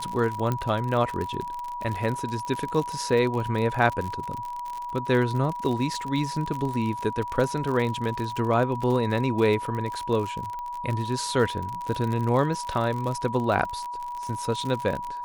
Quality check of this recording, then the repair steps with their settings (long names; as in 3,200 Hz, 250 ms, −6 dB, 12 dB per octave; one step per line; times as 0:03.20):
surface crackle 57 per second −29 dBFS
whistle 970 Hz −31 dBFS
0:00.52: click −14 dBFS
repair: click removal
notch filter 970 Hz, Q 30